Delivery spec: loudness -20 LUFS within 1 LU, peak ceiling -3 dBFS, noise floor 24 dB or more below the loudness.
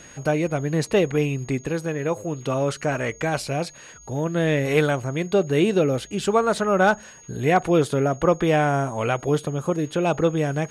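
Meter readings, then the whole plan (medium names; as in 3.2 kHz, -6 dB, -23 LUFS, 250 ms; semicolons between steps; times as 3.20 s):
steady tone 6.6 kHz; tone level -46 dBFS; loudness -22.5 LUFS; peak level -7.0 dBFS; loudness target -20.0 LUFS
-> band-stop 6.6 kHz, Q 30; trim +2.5 dB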